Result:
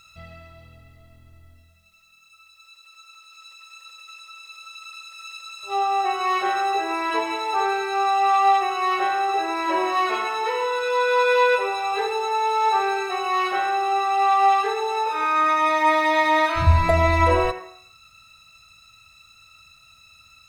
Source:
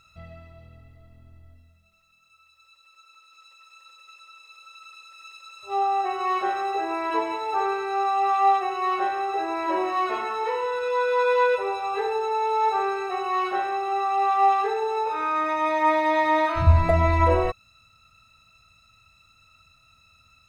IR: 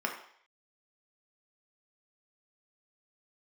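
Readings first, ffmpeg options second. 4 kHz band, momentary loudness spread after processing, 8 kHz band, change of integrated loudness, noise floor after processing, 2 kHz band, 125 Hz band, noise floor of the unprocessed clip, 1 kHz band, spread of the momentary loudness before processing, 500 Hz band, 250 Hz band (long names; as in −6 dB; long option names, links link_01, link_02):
+8.0 dB, 18 LU, can't be measured, +2.5 dB, −54 dBFS, +5.5 dB, 0.0 dB, −60 dBFS, +3.0 dB, 7 LU, +1.0 dB, +1.0 dB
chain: -filter_complex "[0:a]highshelf=frequency=2000:gain=10.5,asplit=2[link_01][link_02];[1:a]atrim=start_sample=2205,adelay=83[link_03];[link_02][link_03]afir=irnorm=-1:irlink=0,volume=-17dB[link_04];[link_01][link_04]amix=inputs=2:normalize=0"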